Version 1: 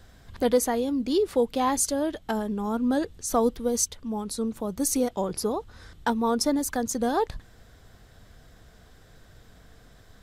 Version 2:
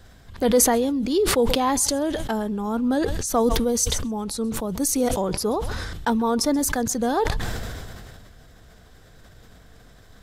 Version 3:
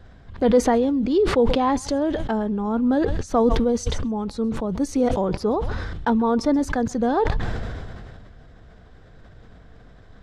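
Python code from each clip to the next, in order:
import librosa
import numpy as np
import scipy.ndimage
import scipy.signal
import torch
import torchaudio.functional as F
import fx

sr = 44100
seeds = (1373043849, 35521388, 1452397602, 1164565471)

y1 = fx.echo_thinned(x, sr, ms=132, feedback_pct=26, hz=970.0, wet_db=-23.5)
y1 = fx.sustainer(y1, sr, db_per_s=25.0)
y1 = F.gain(torch.from_numpy(y1), 2.0).numpy()
y2 = fx.spacing_loss(y1, sr, db_at_10k=24)
y2 = F.gain(torch.from_numpy(y2), 3.0).numpy()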